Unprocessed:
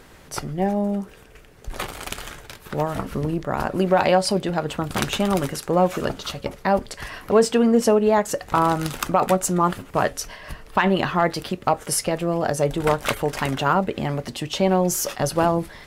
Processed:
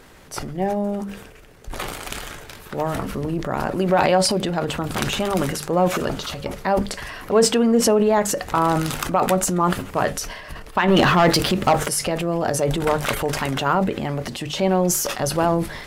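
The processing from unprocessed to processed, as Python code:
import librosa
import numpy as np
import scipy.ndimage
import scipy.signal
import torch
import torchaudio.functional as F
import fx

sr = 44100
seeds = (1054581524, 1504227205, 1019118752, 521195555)

y = fx.hum_notches(x, sr, base_hz=50, count=4)
y = fx.transient(y, sr, attack_db=-1, sustain_db=8)
y = fx.leveller(y, sr, passes=2, at=(10.88, 11.88))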